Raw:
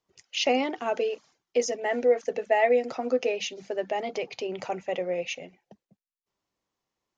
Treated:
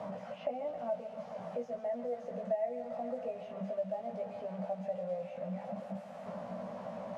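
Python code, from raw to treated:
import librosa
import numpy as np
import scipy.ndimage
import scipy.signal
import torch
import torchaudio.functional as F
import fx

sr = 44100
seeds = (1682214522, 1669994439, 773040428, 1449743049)

y = fx.delta_mod(x, sr, bps=64000, step_db=-28.0)
y = fx.double_bandpass(y, sr, hz=350.0, octaves=1.6)
y = fx.doubler(y, sr, ms=17.0, db=-3)
y = fx.echo_thinned(y, sr, ms=139, feedback_pct=84, hz=350.0, wet_db=-12.5)
y = fx.band_squash(y, sr, depth_pct=70)
y = y * librosa.db_to_amplitude(-3.5)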